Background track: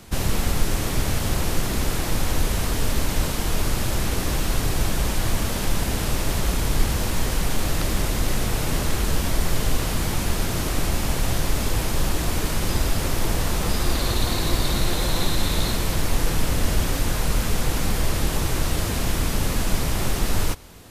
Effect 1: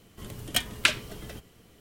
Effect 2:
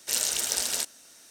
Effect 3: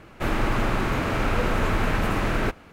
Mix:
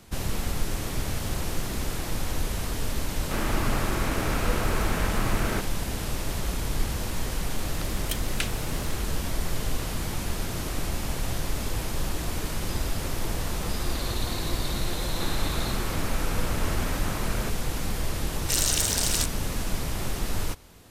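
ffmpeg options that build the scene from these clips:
-filter_complex "[2:a]asplit=2[s0][s1];[3:a]asplit=2[s2][s3];[1:a]asplit=2[s4][s5];[0:a]volume=0.473[s6];[s0]acompressor=threshold=0.00708:ratio=2.5:attack=0.12:release=107:knee=1:detection=rms[s7];[s4]crystalizer=i=1.5:c=0[s8];[s5]acompressor=threshold=0.00398:ratio=6:attack=3.2:release=140:knee=1:detection=peak[s9];[s3]lowpass=9400[s10];[s1]alimiter=level_in=4.22:limit=0.891:release=50:level=0:latency=1[s11];[s7]atrim=end=1.3,asetpts=PTS-STARTPTS,volume=0.422,afade=t=in:d=0.004:c=hsin,afade=t=out:st=1.296:d=0.004:c=hsin,adelay=1100[s12];[s2]atrim=end=2.72,asetpts=PTS-STARTPTS,volume=0.596,afade=t=in:d=0.004:c=hsin,afade=t=out:st=2.716:d=0.004:c=hsin,adelay=3100[s13];[s8]atrim=end=1.8,asetpts=PTS-STARTPTS,volume=0.266,afade=t=in:d=0.004:c=hsin,afade=t=out:st=1.796:d=0.004:c=hsin,adelay=7550[s14];[s9]atrim=end=1.8,asetpts=PTS-STARTPTS,volume=0.282,afade=t=in:d=0.004:c=hsin,afade=t=out:st=1.796:d=0.004:c=hsin,adelay=12050[s15];[s10]atrim=end=2.72,asetpts=PTS-STARTPTS,volume=0.335,afade=t=in:d=0.004:c=hsin,afade=t=out:st=2.716:d=0.004:c=hsin,adelay=14990[s16];[s11]atrim=end=1.3,asetpts=PTS-STARTPTS,volume=0.335,afade=t=in:d=0.004:c=hsin,afade=t=out:st=1.296:d=0.004:c=hsin,adelay=18410[s17];[s6][s12][s13][s14][s15][s16][s17]amix=inputs=7:normalize=0"

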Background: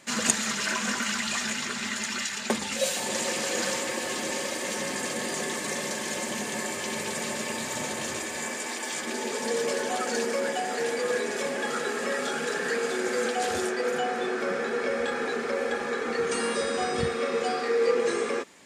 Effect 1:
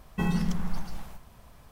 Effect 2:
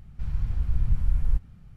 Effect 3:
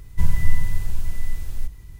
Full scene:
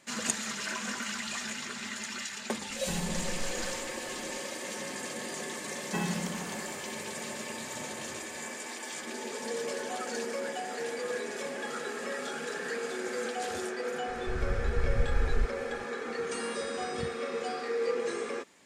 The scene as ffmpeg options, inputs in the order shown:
-filter_complex "[1:a]asplit=2[s0][s1];[0:a]volume=0.447[s2];[s1]highpass=240[s3];[s0]atrim=end=1.71,asetpts=PTS-STARTPTS,volume=0.376,afade=t=in:d=0.004:c=hsin,afade=t=out:st=1.706:d=0.004:c=hsin,adelay=2690[s4];[s3]atrim=end=1.71,asetpts=PTS-STARTPTS,volume=0.944,afade=t=in:d=0.004:c=hsin,afade=t=out:st=1.706:d=0.004:c=hsin,adelay=5750[s5];[2:a]atrim=end=1.76,asetpts=PTS-STARTPTS,volume=0.562,afade=t=in:d=0.004:c=hsin,afade=t=out:st=1.756:d=0.004:c=hsin,adelay=14080[s6];[s2][s4][s5][s6]amix=inputs=4:normalize=0"

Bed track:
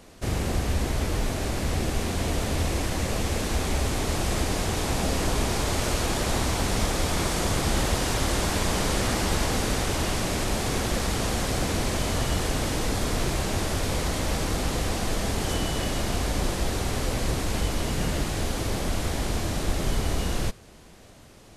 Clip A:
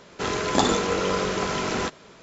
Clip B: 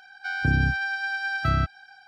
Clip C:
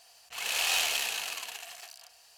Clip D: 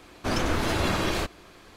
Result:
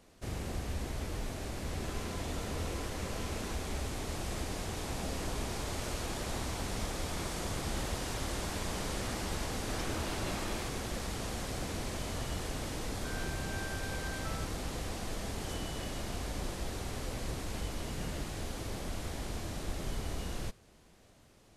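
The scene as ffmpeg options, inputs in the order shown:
-filter_complex "[0:a]volume=0.266[s0];[1:a]acompressor=threshold=0.00891:ratio=6:attack=3.2:release=140:knee=1:detection=peak[s1];[2:a]alimiter=limit=0.15:level=0:latency=1:release=71[s2];[s1]atrim=end=2.22,asetpts=PTS-STARTPTS,volume=0.668,afade=t=in:d=0.004:c=hsin,afade=t=out:st=2.216:d=0.004:c=hsin,adelay=1650[s3];[4:a]atrim=end=1.76,asetpts=PTS-STARTPTS,volume=0.188,afade=t=in:d=0.004:c=hsin,afade=t=out:st=1.756:d=0.004:c=hsin,adelay=9430[s4];[s2]atrim=end=2.07,asetpts=PTS-STARTPTS,volume=0.15,afade=t=in:d=0.004:c=hsin,afade=t=out:st=2.066:d=0.004:c=hsin,adelay=12800[s5];[s0][s3][s4][s5]amix=inputs=4:normalize=0"

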